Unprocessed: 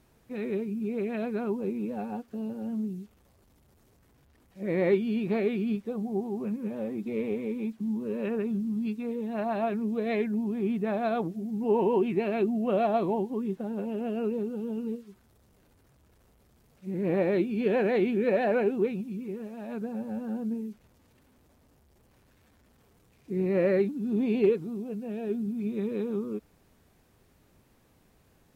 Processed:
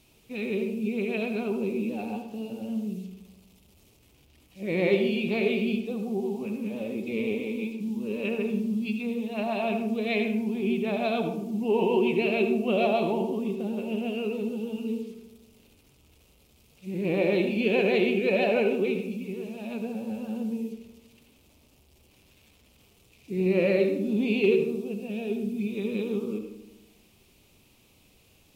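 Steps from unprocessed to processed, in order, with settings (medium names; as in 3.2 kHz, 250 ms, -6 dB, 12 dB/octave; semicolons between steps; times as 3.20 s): resonant high shelf 2.1 kHz +7 dB, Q 3; filtered feedback delay 81 ms, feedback 68%, low-pass 1.5 kHz, level -12.5 dB; on a send at -6.5 dB: reverberation RT60 0.55 s, pre-delay 65 ms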